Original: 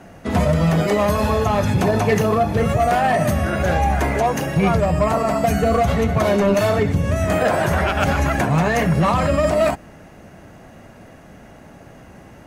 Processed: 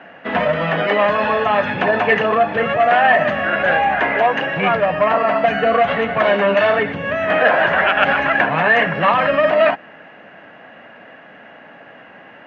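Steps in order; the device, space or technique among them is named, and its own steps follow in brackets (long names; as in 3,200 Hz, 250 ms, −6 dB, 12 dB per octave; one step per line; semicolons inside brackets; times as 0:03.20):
phone earpiece (loudspeaker in its box 340–3,100 Hz, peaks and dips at 370 Hz −7 dB, 1,700 Hz +8 dB, 2,900 Hz +6 dB)
level +4 dB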